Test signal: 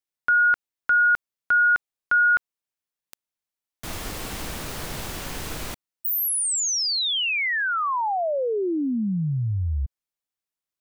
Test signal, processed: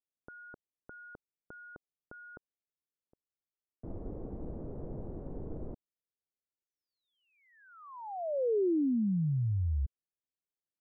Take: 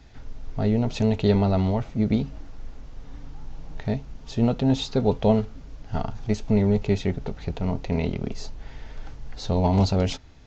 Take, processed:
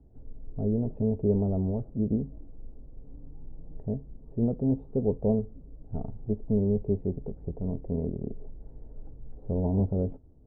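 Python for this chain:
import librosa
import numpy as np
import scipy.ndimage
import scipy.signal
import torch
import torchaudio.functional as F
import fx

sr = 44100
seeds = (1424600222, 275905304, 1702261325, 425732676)

y = fx.ladder_lowpass(x, sr, hz=610.0, resonance_pct=25)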